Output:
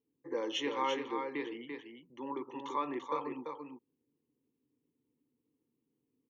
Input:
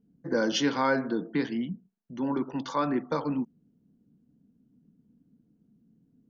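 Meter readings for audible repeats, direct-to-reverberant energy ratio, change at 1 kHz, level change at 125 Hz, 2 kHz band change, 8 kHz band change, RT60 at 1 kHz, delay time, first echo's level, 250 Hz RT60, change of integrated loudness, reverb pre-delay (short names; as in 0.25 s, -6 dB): 1, none, -4.5 dB, -21.0 dB, -9.5 dB, n/a, none, 0.34 s, -5.5 dB, none, -8.5 dB, none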